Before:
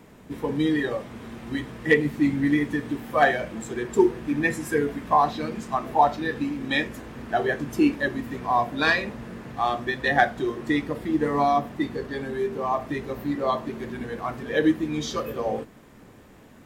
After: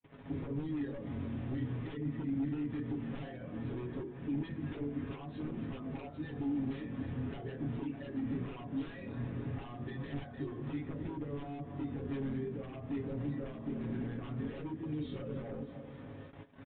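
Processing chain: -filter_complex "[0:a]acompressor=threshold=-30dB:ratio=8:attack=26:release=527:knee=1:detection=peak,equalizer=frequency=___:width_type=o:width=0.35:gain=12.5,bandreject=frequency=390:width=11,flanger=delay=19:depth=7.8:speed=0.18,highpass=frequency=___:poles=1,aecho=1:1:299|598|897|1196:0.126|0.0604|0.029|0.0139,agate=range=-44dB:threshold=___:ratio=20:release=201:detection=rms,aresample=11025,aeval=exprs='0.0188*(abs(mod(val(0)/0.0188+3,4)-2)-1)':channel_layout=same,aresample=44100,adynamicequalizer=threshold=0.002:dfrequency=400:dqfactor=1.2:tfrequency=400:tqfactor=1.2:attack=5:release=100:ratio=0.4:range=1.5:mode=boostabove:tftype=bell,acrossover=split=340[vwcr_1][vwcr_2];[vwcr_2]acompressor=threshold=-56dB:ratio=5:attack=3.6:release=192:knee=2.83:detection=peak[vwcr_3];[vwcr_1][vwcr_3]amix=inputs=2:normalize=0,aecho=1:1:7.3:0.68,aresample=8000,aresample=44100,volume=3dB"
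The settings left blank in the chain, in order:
84, 51, -50dB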